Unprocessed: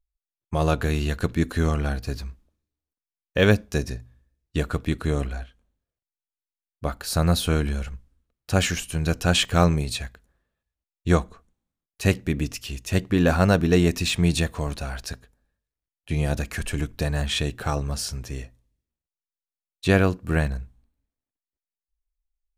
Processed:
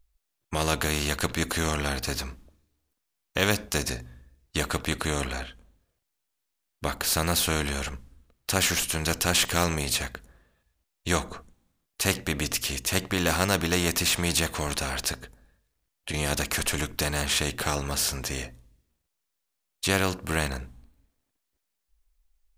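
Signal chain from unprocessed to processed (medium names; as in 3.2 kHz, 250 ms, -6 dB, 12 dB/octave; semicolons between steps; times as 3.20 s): 15.08–16.14 s: compression, threshold -31 dBFS, peak gain reduction 9 dB; spectrum-flattening compressor 2:1; trim -3 dB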